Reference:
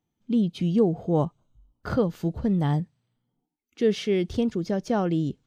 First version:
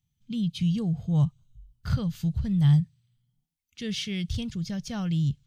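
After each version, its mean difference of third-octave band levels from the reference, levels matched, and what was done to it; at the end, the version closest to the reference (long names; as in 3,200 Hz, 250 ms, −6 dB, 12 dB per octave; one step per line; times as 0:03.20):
6.5 dB: drawn EQ curve 140 Hz 0 dB, 340 Hz −28 dB, 910 Hz −20 dB, 3,300 Hz −4 dB
level +7.5 dB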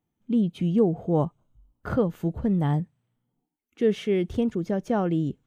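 1.0 dB: parametric band 4,800 Hz −11.5 dB 0.84 octaves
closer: second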